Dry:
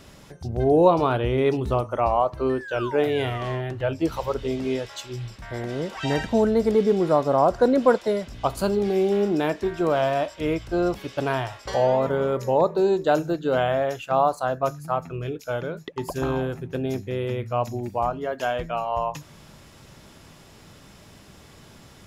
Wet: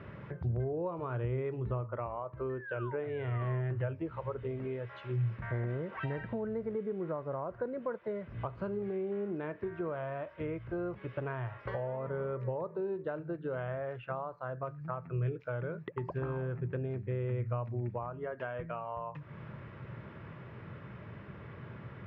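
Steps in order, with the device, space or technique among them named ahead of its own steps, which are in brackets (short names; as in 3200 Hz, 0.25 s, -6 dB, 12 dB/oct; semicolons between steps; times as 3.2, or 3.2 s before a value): bass amplifier (compressor 5:1, threshold -37 dBFS, peak gain reduction 22 dB; speaker cabinet 82–2100 Hz, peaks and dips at 120 Hz +8 dB, 270 Hz -7 dB, 760 Hz -9 dB); gain +2.5 dB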